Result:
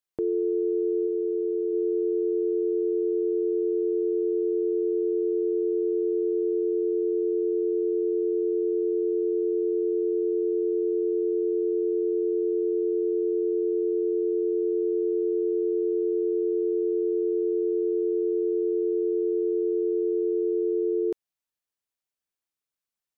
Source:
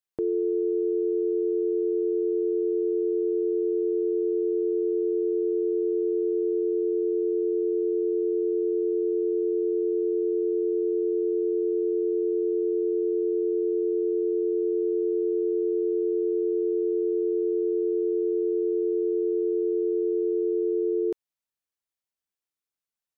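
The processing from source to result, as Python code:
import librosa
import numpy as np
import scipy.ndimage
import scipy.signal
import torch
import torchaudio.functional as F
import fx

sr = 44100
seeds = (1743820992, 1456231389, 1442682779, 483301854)

y = fx.highpass(x, sr, hz=260.0, slope=6, at=(1.06, 1.72), fade=0.02)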